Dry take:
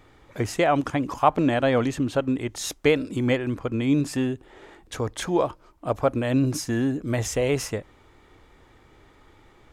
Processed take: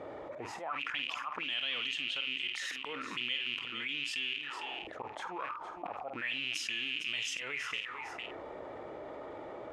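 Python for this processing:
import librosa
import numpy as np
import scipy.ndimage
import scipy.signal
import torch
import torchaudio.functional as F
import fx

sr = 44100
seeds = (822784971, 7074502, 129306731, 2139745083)

p1 = fx.rattle_buzz(x, sr, strikes_db=-39.0, level_db=-26.0)
p2 = fx.highpass(p1, sr, hz=46.0, slope=6)
p3 = fx.peak_eq(p2, sr, hz=660.0, db=-8.0, octaves=0.99)
p4 = fx.notch(p3, sr, hz=1600.0, q=27.0)
p5 = fx.level_steps(p4, sr, step_db=15)
p6 = p4 + (p5 * librosa.db_to_amplitude(2.0))
p7 = fx.auto_swell(p6, sr, attack_ms=368.0)
p8 = fx.auto_wah(p7, sr, base_hz=560.0, top_hz=3000.0, q=8.1, full_db=-22.0, direction='up')
p9 = fx.doubler(p8, sr, ms=49.0, db=-12)
p10 = p9 + fx.echo_single(p9, sr, ms=456, db=-18.0, dry=0)
y = fx.env_flatten(p10, sr, amount_pct=70)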